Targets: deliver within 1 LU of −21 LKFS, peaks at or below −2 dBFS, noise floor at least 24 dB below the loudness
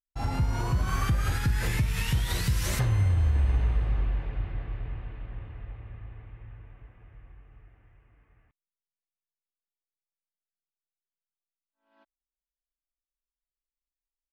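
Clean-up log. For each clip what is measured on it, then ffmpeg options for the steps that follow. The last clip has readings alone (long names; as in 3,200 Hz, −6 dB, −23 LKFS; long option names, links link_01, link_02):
integrated loudness −28.5 LKFS; sample peak −16.0 dBFS; target loudness −21.0 LKFS
→ -af "volume=7.5dB"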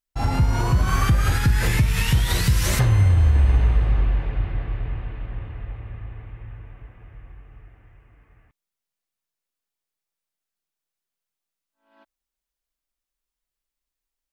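integrated loudness −21.0 LKFS; sample peak −8.5 dBFS; background noise floor −87 dBFS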